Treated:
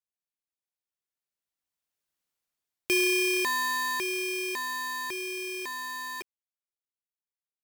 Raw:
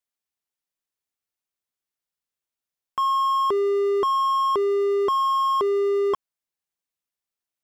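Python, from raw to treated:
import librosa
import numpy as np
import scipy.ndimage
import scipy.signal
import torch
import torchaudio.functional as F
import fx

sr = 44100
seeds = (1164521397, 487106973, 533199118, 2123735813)

y = fx.doppler_pass(x, sr, speed_mps=17, closest_m=7.1, pass_at_s=2.24)
y = y * np.sign(np.sin(2.0 * np.pi * 1400.0 * np.arange(len(y)) / sr))
y = y * librosa.db_to_amplitude(3.5)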